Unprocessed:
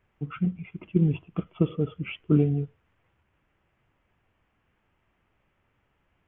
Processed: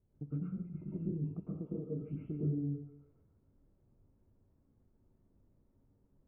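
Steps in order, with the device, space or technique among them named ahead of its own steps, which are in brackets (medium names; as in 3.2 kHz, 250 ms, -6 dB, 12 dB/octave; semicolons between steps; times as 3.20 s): 1.53–2.02 s: bass shelf 140 Hz -12 dB; band-passed feedback delay 143 ms, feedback 65%, band-pass 1.5 kHz, level -13 dB; television next door (compression 4:1, threshold -38 dBFS, peak gain reduction 18.5 dB; low-pass 360 Hz 12 dB/octave; reverberation RT60 0.50 s, pre-delay 101 ms, DRR -6 dB); dynamic bell 650 Hz, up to +4 dB, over -53 dBFS, Q 1.4; trim -3.5 dB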